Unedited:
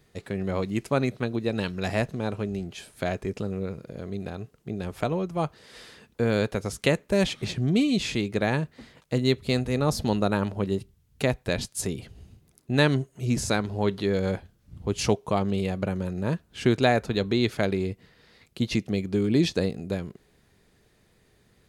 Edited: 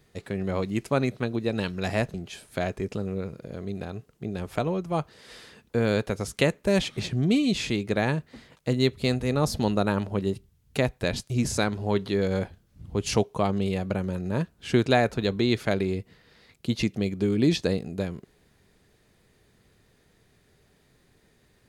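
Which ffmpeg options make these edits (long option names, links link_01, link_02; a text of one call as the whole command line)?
ffmpeg -i in.wav -filter_complex "[0:a]asplit=3[link_01][link_02][link_03];[link_01]atrim=end=2.142[link_04];[link_02]atrim=start=2.588:end=11.752[link_05];[link_03]atrim=start=13.218[link_06];[link_04][link_05]acrossfade=duration=0.004:curve1=hsin:curve2=hsin[link_07];[link_07][link_06]acrossfade=duration=0.004:curve1=hsin:curve2=hsin" out.wav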